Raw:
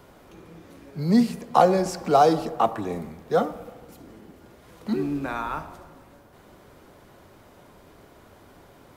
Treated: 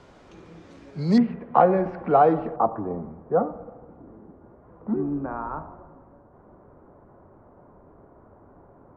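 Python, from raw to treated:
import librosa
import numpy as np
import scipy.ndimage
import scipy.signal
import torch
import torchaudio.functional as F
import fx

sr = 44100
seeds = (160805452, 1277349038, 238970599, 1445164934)

y = fx.lowpass(x, sr, hz=fx.steps((0.0, 7100.0), (1.18, 2100.0), (2.56, 1200.0)), slope=24)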